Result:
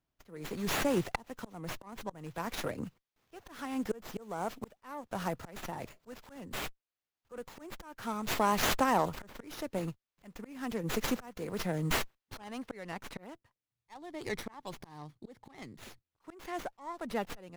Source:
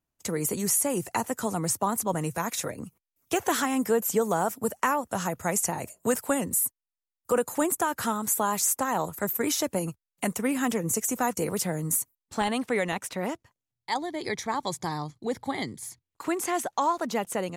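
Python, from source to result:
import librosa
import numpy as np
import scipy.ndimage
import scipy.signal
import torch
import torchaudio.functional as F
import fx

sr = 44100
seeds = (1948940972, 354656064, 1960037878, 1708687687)

y = fx.auto_swell(x, sr, attack_ms=770.0)
y = fx.running_max(y, sr, window=5)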